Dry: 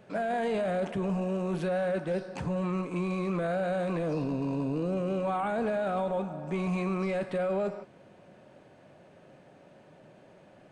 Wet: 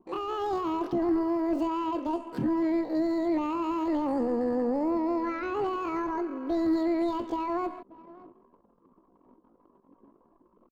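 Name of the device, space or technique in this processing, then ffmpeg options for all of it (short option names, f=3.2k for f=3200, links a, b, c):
chipmunk voice: -filter_complex "[0:a]asettb=1/sr,asplit=3[a][b][c];[a]atrim=end=4.924[d];[b]atrim=start=4.92:end=5.57,asetpts=PTS-STARTPTS,afade=t=in:d=0.004:c=qsin,afade=t=out:st=0.646:d=0.004:c=qsin,highshelf=f=5.4k:g=-7.5[e];[c]atrim=start=5.566[f];[d][e]acrossfade=d=0.004:c1=hsin:c2=qsin[g];[g][f]acrossfade=d=0.004:c1=qsin:c2=hsin,asetrate=78577,aresample=44100,atempo=0.561231,asplit=2[h][i];[i]adelay=583.1,volume=-20dB,highshelf=f=4k:g=-13.1[j];[h][j]amix=inputs=2:normalize=0,anlmdn=0.00398,tiltshelf=f=650:g=9.5"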